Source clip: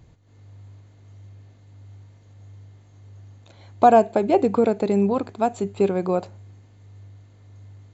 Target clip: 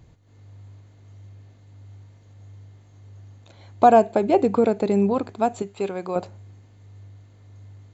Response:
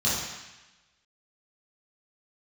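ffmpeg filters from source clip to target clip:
-filter_complex "[0:a]asettb=1/sr,asplit=3[s0][s1][s2];[s0]atrim=end=5.624[s3];[s1]atrim=start=5.62:end=6.16,asetpts=PTS-STARTPTS,afade=t=in:d=0.004:c=qsin,afade=t=out:st=0.536:d=0.004:c=qsin,lowshelf=f=490:g=-11[s4];[s2]atrim=start=6.156[s5];[s3][s4]acrossfade=d=0.004:c1=hsin:c2=qsin[s6];[s6][s5]acrossfade=d=0.004:c1=qsin:c2=hsin"

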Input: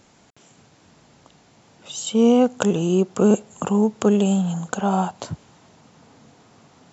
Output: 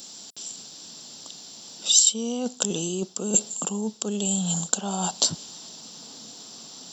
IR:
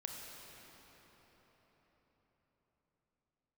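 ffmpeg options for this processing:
-af "lowshelf=f=150:t=q:w=1.5:g=-8.5,bandreject=f=6600:w=5.4,areverse,acompressor=threshold=0.0501:ratio=10,areverse,aexciter=amount=10.9:drive=5.4:freq=3300"

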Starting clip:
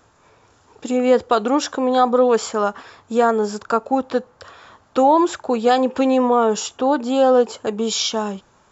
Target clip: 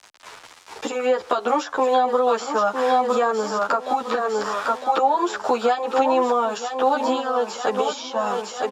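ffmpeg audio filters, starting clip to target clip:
-filter_complex "[0:a]acrusher=bits=7:mix=0:aa=0.000001,aecho=1:1:956|1912|2868|3824:0.299|0.119|0.0478|0.0191,crystalizer=i=6.5:c=0,acompressor=threshold=0.0891:ratio=10,lowpass=6000,equalizer=f=900:t=o:w=2.9:g=14,acrossover=split=250|850|2000[s0][s1][s2][s3];[s0]acompressor=threshold=0.0178:ratio=4[s4];[s1]acompressor=threshold=0.126:ratio=4[s5];[s2]acompressor=threshold=0.0891:ratio=4[s6];[s3]acompressor=threshold=0.0224:ratio=4[s7];[s4][s5][s6][s7]amix=inputs=4:normalize=0,asplit=2[s8][s9];[s9]adelay=10.7,afreqshift=-1.2[s10];[s8][s10]amix=inputs=2:normalize=1"

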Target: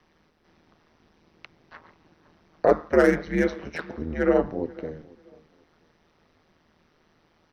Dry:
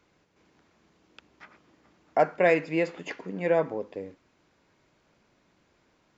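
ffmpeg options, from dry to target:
-filter_complex "[0:a]asetrate=36162,aresample=44100,acrossover=split=120|490|2000[s0][s1][s2][s3];[s3]aeval=exprs='0.0158*(abs(mod(val(0)/0.0158+3,4)-2)-1)':c=same[s4];[s0][s1][s2][s4]amix=inputs=4:normalize=0,aeval=exprs='val(0)*sin(2*PI*79*n/s)':c=same,asplit=2[s5][s6];[s6]adelay=489,lowpass=f=1400:p=1,volume=0.0841,asplit=2[s7][s8];[s8]adelay=489,lowpass=f=1400:p=1,volume=0.28[s9];[s5][s7][s9]amix=inputs=3:normalize=0,volume=2"

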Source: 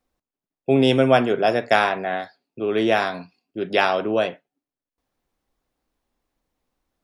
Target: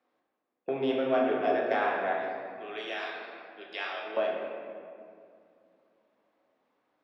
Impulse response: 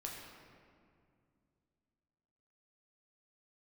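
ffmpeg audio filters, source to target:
-filter_complex "[0:a]asettb=1/sr,asplit=3[s0][s1][s2];[s0]atrim=end=2.134[s3];[s1]atrim=start=2.13:end=4.17,asetpts=PTS-STARTPTS,afade=t=in:d=0.004:c=qsin,afade=t=out:st=2.036:d=0.004:c=qsin,aderivative[s4];[s2]atrim=start=4.166[s5];[s3][s4]acrossfade=d=0.004:c1=hsin:c2=qsin[s6];[s6][s5]acrossfade=d=0.004:c1=qsin:c2=hsin,acompressor=threshold=0.0158:ratio=2.5,asoftclip=type=tanh:threshold=0.1,highpass=340,lowpass=2700[s7];[1:a]atrim=start_sample=2205,asetrate=41454,aresample=44100[s8];[s7][s8]afir=irnorm=-1:irlink=0,volume=2.37"

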